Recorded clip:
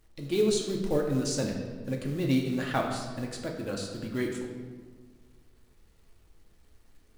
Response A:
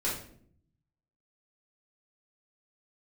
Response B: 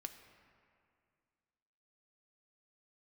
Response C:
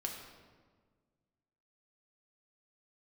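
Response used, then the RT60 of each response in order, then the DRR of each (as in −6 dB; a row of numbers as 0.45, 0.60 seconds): C; 0.60, 2.3, 1.6 seconds; −7.5, 6.0, 0.0 decibels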